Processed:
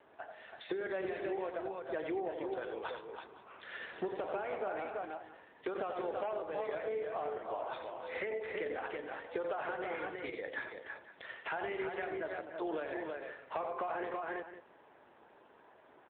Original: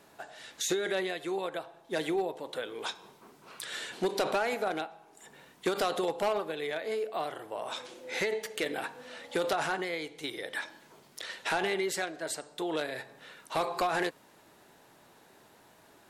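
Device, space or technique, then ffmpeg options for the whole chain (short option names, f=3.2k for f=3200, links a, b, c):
voicemail: -filter_complex "[0:a]lowpass=10k,aemphasis=mode=reproduction:type=bsi,asettb=1/sr,asplit=3[a][b][c];[a]atrim=end=10.584[d];[b]atrim=start=10.58:end=11.51,asetpts=PTS-STARTPTS,afade=t=in:d=0.004:c=qsin,afade=t=out:st=0.926:d=0.004:c=qsin,bandreject=f=60:t=h:w=6,bandreject=f=120:t=h:w=6,bandreject=f=180:t=h:w=6,bandreject=f=240:t=h:w=6,bandreject=f=300:t=h:w=6[e];[c]atrim=start=11.506[f];[d][e]acrossfade=d=0.004:c1=hsin:c2=qsin[g];[g][f]acrossfade=d=0.004:c1=qsin:c2=hsin,highpass=410,lowpass=2.8k,aecho=1:1:43|89|293|330|508:0.141|0.355|0.168|0.473|0.126,acompressor=threshold=-32dB:ratio=10,volume=-1dB" -ar 8000 -c:a libopencore_amrnb -b:a 7950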